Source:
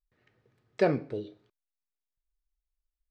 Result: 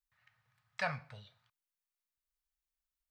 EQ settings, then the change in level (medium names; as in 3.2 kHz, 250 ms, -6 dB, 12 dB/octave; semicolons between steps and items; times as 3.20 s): Chebyshev band-stop 120–1000 Hz, order 2; tilt EQ +3 dB/octave; treble shelf 2.1 kHz -11 dB; +3.0 dB